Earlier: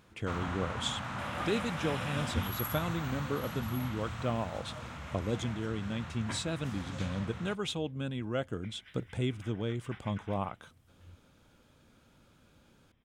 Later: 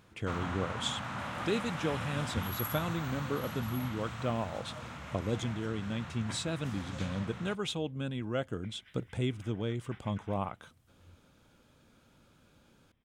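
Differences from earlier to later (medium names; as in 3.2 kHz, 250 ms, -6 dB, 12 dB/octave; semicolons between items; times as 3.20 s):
first sound: add high-pass 84 Hz; second sound -4.0 dB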